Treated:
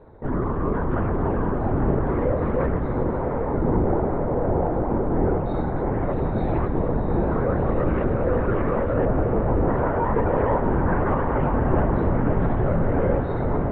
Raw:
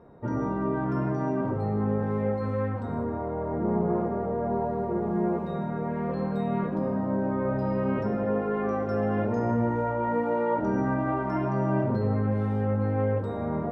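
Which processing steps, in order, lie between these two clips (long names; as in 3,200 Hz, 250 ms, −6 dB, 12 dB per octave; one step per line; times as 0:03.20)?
linear-prediction vocoder at 8 kHz whisper
0:09.05–0:09.68: low-pass filter 1,200 Hz 24 dB per octave
feedback delay with all-pass diffusion 737 ms, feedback 62%, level −7 dB
level +4.5 dB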